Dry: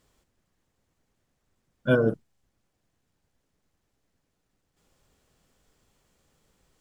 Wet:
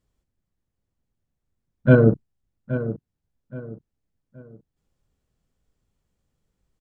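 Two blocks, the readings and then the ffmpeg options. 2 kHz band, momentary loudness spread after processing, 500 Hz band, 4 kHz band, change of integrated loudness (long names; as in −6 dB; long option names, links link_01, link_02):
+3.5 dB, 22 LU, +5.5 dB, can't be measured, +5.0 dB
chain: -filter_complex "[0:a]afwtdn=0.0112,lowshelf=frequency=230:gain=12,asplit=2[link_01][link_02];[link_02]adelay=823,lowpass=frequency=2400:poles=1,volume=-12dB,asplit=2[link_03][link_04];[link_04]adelay=823,lowpass=frequency=2400:poles=1,volume=0.33,asplit=2[link_05][link_06];[link_06]adelay=823,lowpass=frequency=2400:poles=1,volume=0.33[link_07];[link_01][link_03][link_05][link_07]amix=inputs=4:normalize=0,volume=3dB"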